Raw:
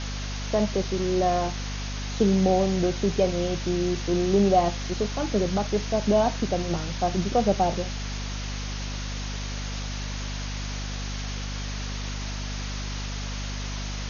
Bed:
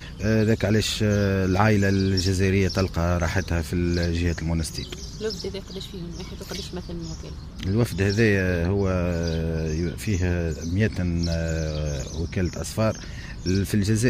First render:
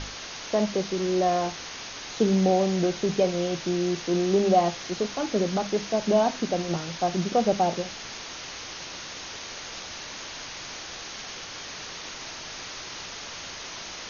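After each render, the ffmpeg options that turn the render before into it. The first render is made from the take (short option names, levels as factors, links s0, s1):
-af "bandreject=f=50:t=h:w=6,bandreject=f=100:t=h:w=6,bandreject=f=150:t=h:w=6,bandreject=f=200:t=h:w=6,bandreject=f=250:t=h:w=6"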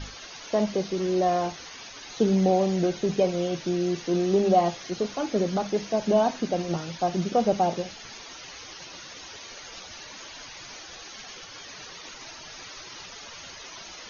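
-af "afftdn=nr=11:nf=-39"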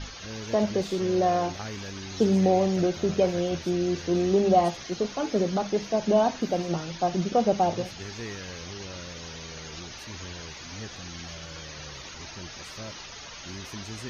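-filter_complex "[1:a]volume=0.119[s0];[0:a][s0]amix=inputs=2:normalize=0"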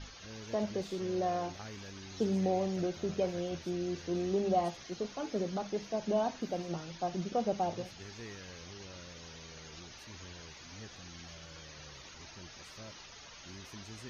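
-af "volume=0.335"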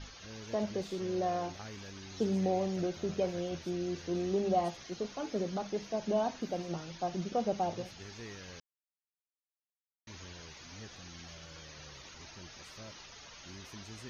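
-filter_complex "[0:a]asplit=3[s0][s1][s2];[s0]atrim=end=8.6,asetpts=PTS-STARTPTS,afade=t=out:st=8.596:d=0.004:c=hsin[s3];[s1]atrim=start=8.6:end=10.07,asetpts=PTS-STARTPTS,volume=0[s4];[s2]atrim=start=10.07,asetpts=PTS-STARTPTS,afade=t=in:d=0.004:c=hsin[s5];[s3][s4][s5]concat=n=3:v=0:a=1"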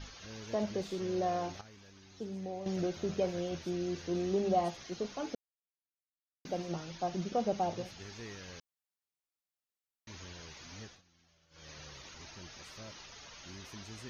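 -filter_complex "[0:a]asplit=7[s0][s1][s2][s3][s4][s5][s6];[s0]atrim=end=1.612[s7];[s1]atrim=start=1.608:end=2.662,asetpts=PTS-STARTPTS,volume=0.316[s8];[s2]atrim=start=2.658:end=5.35,asetpts=PTS-STARTPTS,afade=t=out:st=2.688:d=0.004:c=hsin[s9];[s3]atrim=start=5.35:end=6.45,asetpts=PTS-STARTPTS,volume=0[s10];[s4]atrim=start=6.45:end=11.02,asetpts=PTS-STARTPTS,afade=t=in:d=0.004:c=hsin,afade=t=out:st=4.37:d=0.2:silence=0.0944061[s11];[s5]atrim=start=11.02:end=11.5,asetpts=PTS-STARTPTS,volume=0.0944[s12];[s6]atrim=start=11.5,asetpts=PTS-STARTPTS,afade=t=in:d=0.2:silence=0.0944061[s13];[s7][s8]acrossfade=d=0.004:c1=hsin:c2=hsin[s14];[s9][s10][s11][s12][s13]concat=n=5:v=0:a=1[s15];[s14][s15]acrossfade=d=0.004:c1=hsin:c2=hsin"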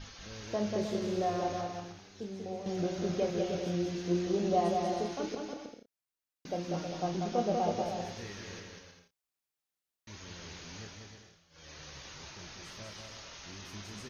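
-filter_complex "[0:a]asplit=2[s0][s1];[s1]adelay=29,volume=0.398[s2];[s0][s2]amix=inputs=2:normalize=0,aecho=1:1:190|313.5|393.8|446|479.9:0.631|0.398|0.251|0.158|0.1"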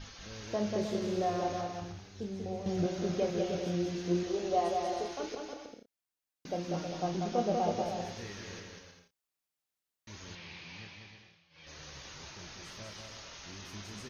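-filter_complex "[0:a]asettb=1/sr,asplit=3[s0][s1][s2];[s0]atrim=end=1.814[s3];[s1]atrim=start=1.81:end=2.86,asetpts=PTS-STARTPTS,afade=t=in:d=0.004:c=qsin,afade=t=out:st=1.046:d=0.004:c=qsin,equalizer=f=70:t=o:w=1.6:g=13[s4];[s2]atrim=start=2.856[s5];[s3][s4]acrossfade=d=0.004:c1=hsin:c2=qsin[s6];[s6][s5]acrossfade=d=0.004:c1=qsin:c2=hsin,asettb=1/sr,asplit=3[s7][s8][s9];[s7]atrim=end=4.234[s10];[s8]atrim=start=4.23:end=5.7,asetpts=PTS-STARTPTS,afade=t=in:d=0.004:c=qsin,afade=t=out:st=1.466:d=0.004:c=qsin,equalizer=f=190:w=1.7:g=-14[s11];[s9]atrim=start=5.696[s12];[s10][s11]acrossfade=d=0.004:c1=hsin:c2=qsin[s13];[s13][s12]acrossfade=d=0.004:c1=qsin:c2=hsin,asettb=1/sr,asplit=3[s14][s15][s16];[s14]atrim=end=10.354[s17];[s15]atrim=start=10.35:end=11.67,asetpts=PTS-STARTPTS,afade=t=in:d=0.004:c=qsin,afade=t=out:st=1.316:d=0.004:c=qsin,highpass=110,equalizer=f=260:t=q:w=4:g=-8,equalizer=f=430:t=q:w=4:g=-8,equalizer=f=630:t=q:w=4:g=-5,equalizer=f=1400:t=q:w=4:g=-7,equalizer=f=2400:t=q:w=4:g=8,lowpass=f=4700:w=0.5412,lowpass=f=4700:w=1.3066[s18];[s16]atrim=start=11.666[s19];[s17][s18]acrossfade=d=0.004:c1=hsin:c2=qsin[s20];[s20][s19]acrossfade=d=0.004:c1=qsin:c2=hsin"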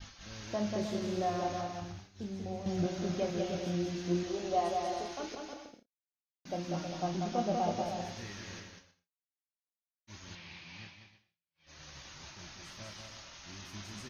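-af "agate=range=0.0224:threshold=0.00562:ratio=3:detection=peak,equalizer=f=450:w=4.2:g=-9"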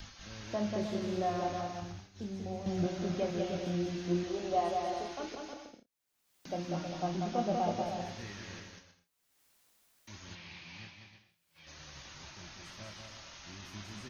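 -filter_complex "[0:a]acrossover=split=160|1300|4400[s0][s1][s2][s3];[s3]alimiter=level_in=20:limit=0.0631:level=0:latency=1,volume=0.0501[s4];[s0][s1][s2][s4]amix=inputs=4:normalize=0,acompressor=mode=upward:threshold=0.00447:ratio=2.5"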